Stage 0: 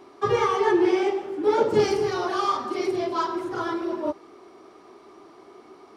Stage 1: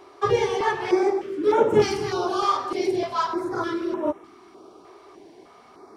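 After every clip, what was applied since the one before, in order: step-sequenced notch 3.3 Hz 220–4600 Hz; trim +2.5 dB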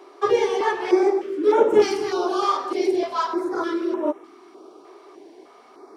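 resonant low shelf 210 Hz -13 dB, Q 1.5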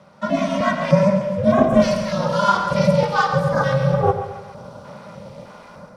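level rider gain up to 10.5 dB; ring modulator 200 Hz; two-band feedback delay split 690 Hz, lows 103 ms, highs 137 ms, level -10 dB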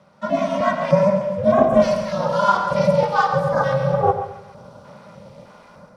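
dynamic bell 760 Hz, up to +7 dB, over -29 dBFS, Q 0.89; trim -4.5 dB

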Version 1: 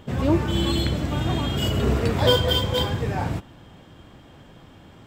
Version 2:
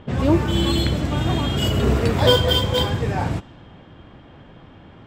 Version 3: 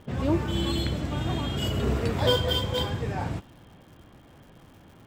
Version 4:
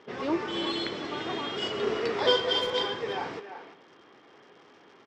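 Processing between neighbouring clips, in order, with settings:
level-controlled noise filter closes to 2.8 kHz, open at -19.5 dBFS; trim +3 dB
crackle 250 per s -41 dBFS; trim -7.5 dB
cabinet simulation 390–5700 Hz, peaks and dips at 410 Hz +8 dB, 600 Hz -4 dB, 1.2 kHz +3 dB, 2 kHz +4 dB, 5.4 kHz +5 dB; speakerphone echo 340 ms, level -9 dB

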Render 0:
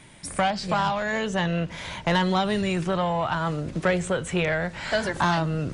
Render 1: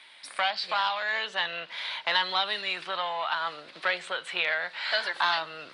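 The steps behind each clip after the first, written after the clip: high-pass 1 kHz 12 dB/octave; resonant high shelf 5.3 kHz -8.5 dB, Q 3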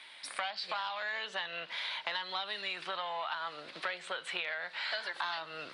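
compression 4:1, threshold -35 dBFS, peak gain reduction 13 dB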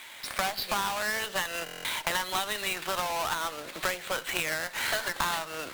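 square wave that keeps the level; Chebyshev shaper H 4 -17 dB, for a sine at -19.5 dBFS; buffer glitch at 1.64 s, samples 1024, times 8; trim +3 dB

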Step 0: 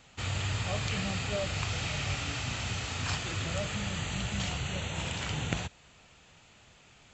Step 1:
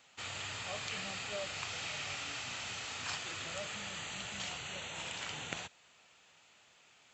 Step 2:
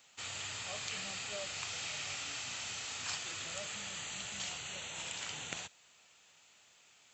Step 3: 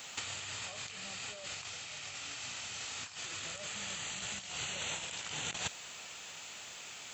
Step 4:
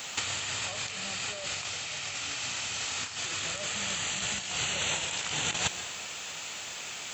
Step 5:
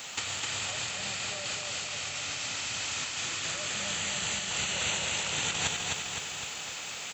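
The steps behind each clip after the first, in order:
high-pass 640 Hz 6 dB/octave; trim -4 dB
treble shelf 5.1 kHz +11.5 dB; trim -3.5 dB
compressor with a negative ratio -48 dBFS, ratio -0.5; trim +8.5 dB
reverberation RT60 0.85 s, pre-delay 112 ms, DRR 10.5 dB; trim +8 dB
feedback delay 256 ms, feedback 59%, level -3 dB; trim -2 dB

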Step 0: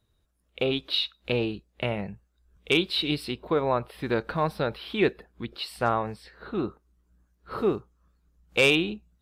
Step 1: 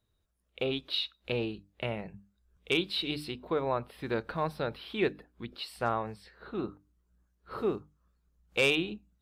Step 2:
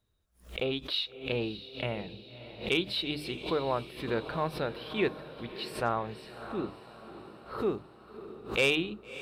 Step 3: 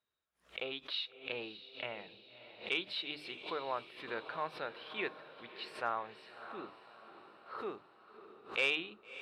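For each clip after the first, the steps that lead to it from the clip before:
hum notches 50/100/150/200/250/300 Hz; trim -5.5 dB
echo that smears into a reverb 617 ms, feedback 55%, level -13 dB; swell ahead of each attack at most 150 dB/s
band-pass filter 1.7 kHz, Q 0.65; trim -3 dB

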